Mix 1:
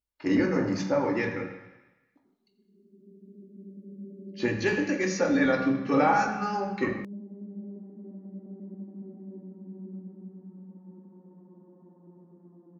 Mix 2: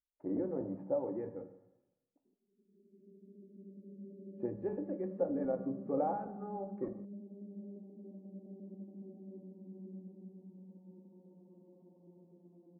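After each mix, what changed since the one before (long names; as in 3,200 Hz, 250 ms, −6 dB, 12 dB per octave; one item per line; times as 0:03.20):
speech: send −9.0 dB
master: add transistor ladder low-pass 760 Hz, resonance 40%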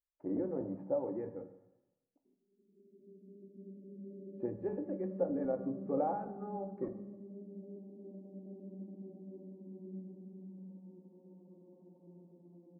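background: send on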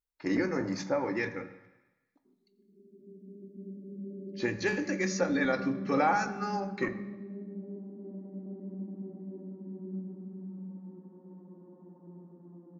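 speech: add parametric band 2,900 Hz −8.5 dB 0.21 octaves
master: remove transistor ladder low-pass 760 Hz, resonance 40%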